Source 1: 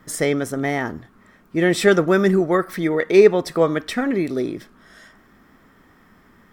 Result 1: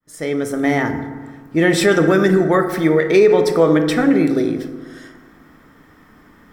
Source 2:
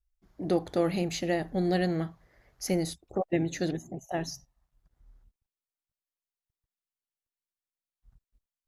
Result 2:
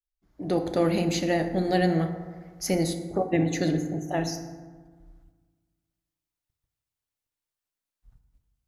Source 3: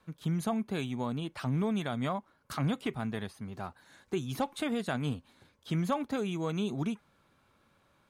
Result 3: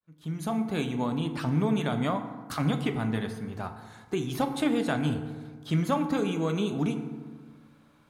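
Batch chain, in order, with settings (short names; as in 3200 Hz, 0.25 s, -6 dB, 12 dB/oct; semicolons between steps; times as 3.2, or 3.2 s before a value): opening faded in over 0.68 s; FDN reverb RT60 1.5 s, low-frequency decay 1.25×, high-frequency decay 0.45×, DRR 6 dB; maximiser +6 dB; gain -2.5 dB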